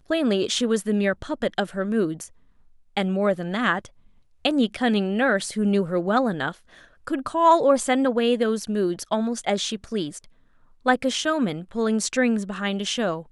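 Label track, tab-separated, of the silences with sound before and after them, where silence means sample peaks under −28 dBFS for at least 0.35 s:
2.240000	2.970000	silence
3.850000	4.450000	silence
6.510000	7.070000	silence
10.170000	10.860000	silence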